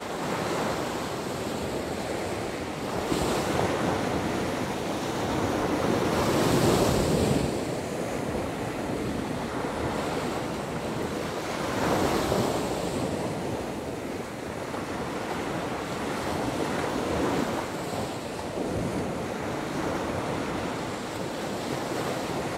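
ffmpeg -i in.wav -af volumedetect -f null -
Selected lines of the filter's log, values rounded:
mean_volume: -28.7 dB
max_volume: -10.8 dB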